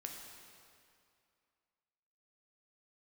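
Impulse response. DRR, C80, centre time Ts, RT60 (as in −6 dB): 1.0 dB, 4.0 dB, 79 ms, 2.4 s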